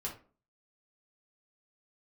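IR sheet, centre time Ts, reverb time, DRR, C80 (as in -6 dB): 19 ms, 0.40 s, -4.0 dB, 15.0 dB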